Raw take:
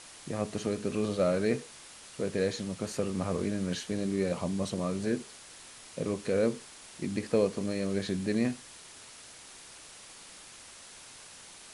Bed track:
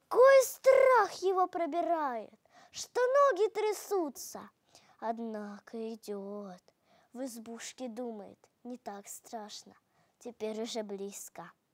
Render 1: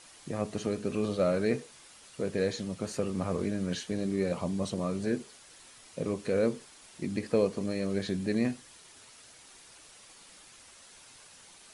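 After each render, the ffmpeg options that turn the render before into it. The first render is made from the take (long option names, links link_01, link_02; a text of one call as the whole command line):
ffmpeg -i in.wav -af "afftdn=noise_reduction=6:noise_floor=-51" out.wav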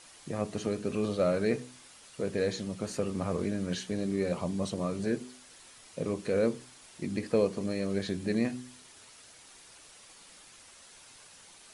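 ffmpeg -i in.wav -af "bandreject=frequency=62.73:width_type=h:width=4,bandreject=frequency=125.46:width_type=h:width=4,bandreject=frequency=188.19:width_type=h:width=4,bandreject=frequency=250.92:width_type=h:width=4,bandreject=frequency=313.65:width_type=h:width=4,bandreject=frequency=376.38:width_type=h:width=4" out.wav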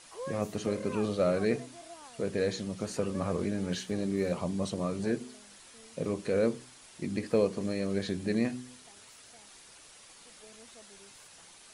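ffmpeg -i in.wav -i bed.wav -filter_complex "[1:a]volume=-18.5dB[link_01];[0:a][link_01]amix=inputs=2:normalize=0" out.wav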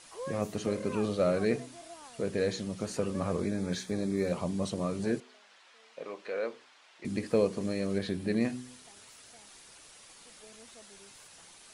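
ffmpeg -i in.wav -filter_complex "[0:a]asettb=1/sr,asplit=3[link_01][link_02][link_03];[link_01]atrim=end=3.404[link_04];[link_02]atrim=start=3.4:end=4.28,asetpts=PTS-STARTPTS,afade=type=in:duration=0.004:curve=qsin,afade=type=out:start_time=0.876:duration=0.004:curve=qsin,asuperstop=centerf=2900:order=4:qfactor=5.4[link_05];[link_03]atrim=start=4.276[link_06];[link_04][link_05]acrossfade=duration=0.004:curve1=hsin:curve2=qsin[link_07];[link_07][link_06]acrossfade=duration=0.004:curve1=qsin:curve2=hsin,asettb=1/sr,asplit=3[link_08][link_09][link_10];[link_08]atrim=end=5.204[link_11];[link_09]atrim=start=5.2:end=7.05,asetpts=PTS-STARTPTS,afade=type=in:duration=0.004:curve=qsin,afade=type=out:start_time=1.846:duration=0.004:curve=qsin,highpass=650,lowpass=3400[link_12];[link_10]atrim=start=7.046[link_13];[link_11][link_12]acrossfade=duration=0.004:curve1=hsin:curve2=qsin[link_14];[link_14][link_13]acrossfade=duration=0.004:curve1=qsin:curve2=hsin,asettb=1/sr,asplit=3[link_15][link_16][link_17];[link_15]atrim=end=7.984[link_18];[link_16]atrim=start=7.98:end=8.41,asetpts=PTS-STARTPTS,afade=type=in:duration=0.004:curve=qsin,afade=type=out:start_time=0.426:duration=0.004:curve=qsin,equalizer=frequency=6700:width=1.9:gain=-6.5[link_19];[link_17]atrim=start=8.406[link_20];[link_18][link_19]acrossfade=duration=0.004:curve1=hsin:curve2=qsin[link_21];[link_21][link_20]acrossfade=duration=0.004:curve1=qsin:curve2=hsin" out.wav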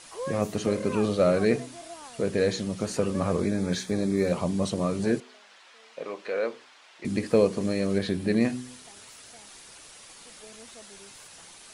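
ffmpeg -i in.wav -af "volume=5.5dB" out.wav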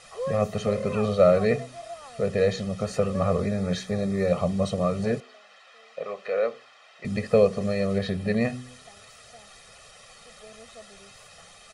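ffmpeg -i in.wav -af "lowpass=frequency=3300:poles=1,aecho=1:1:1.6:0.89" out.wav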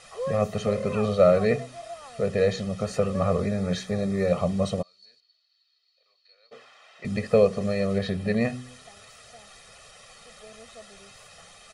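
ffmpeg -i in.wav -filter_complex "[0:a]asplit=3[link_01][link_02][link_03];[link_01]afade=type=out:start_time=4.81:duration=0.02[link_04];[link_02]bandpass=frequency=4400:width_type=q:width=16,afade=type=in:start_time=4.81:duration=0.02,afade=type=out:start_time=6.51:duration=0.02[link_05];[link_03]afade=type=in:start_time=6.51:duration=0.02[link_06];[link_04][link_05][link_06]amix=inputs=3:normalize=0" out.wav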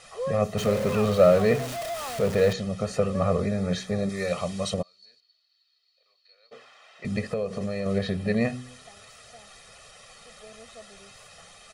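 ffmpeg -i in.wav -filter_complex "[0:a]asettb=1/sr,asplit=3[link_01][link_02][link_03];[link_01]atrim=end=0.574[link_04];[link_02]atrim=start=0.57:end=2.53,asetpts=PTS-STARTPTS,afade=type=in:duration=0.004:curve=qsin,afade=type=out:start_time=1.956:duration=0.004:curve=qsin,aeval=exprs='val(0)+0.5*0.0316*sgn(val(0))':channel_layout=same[link_05];[link_03]atrim=start=2.526[link_06];[link_04][link_05]acrossfade=duration=0.004:curve1=hsin:curve2=qsin[link_07];[link_07][link_06]acrossfade=duration=0.004:curve1=qsin:curve2=hsin,asettb=1/sr,asplit=3[link_08][link_09][link_10];[link_08]atrim=end=4.094[link_11];[link_09]atrim=start=4.09:end=4.74,asetpts=PTS-STARTPTS,afade=type=in:duration=0.004:curve=qsin,afade=type=out:start_time=0.646:duration=0.004:curve=qsin,tiltshelf=frequency=1200:gain=-7[link_12];[link_10]atrim=start=4.736[link_13];[link_11][link_12]acrossfade=duration=0.004:curve1=hsin:curve2=qsin[link_14];[link_14][link_13]acrossfade=duration=0.004:curve1=qsin:curve2=hsin,asettb=1/sr,asplit=3[link_15][link_16][link_17];[link_15]atrim=end=7.264[link_18];[link_16]atrim=start=7.26:end=7.86,asetpts=PTS-STARTPTS,afade=type=in:duration=0.004:curve=qsin,afade=type=out:start_time=0.596:duration=0.004:curve=qsin,acompressor=threshold=-26dB:ratio=4:attack=3.2:release=140:knee=1:detection=peak[link_19];[link_17]atrim=start=7.856[link_20];[link_18][link_19]acrossfade=duration=0.004:curve1=hsin:curve2=qsin[link_21];[link_21][link_20]acrossfade=duration=0.004:curve1=qsin:curve2=hsin" out.wav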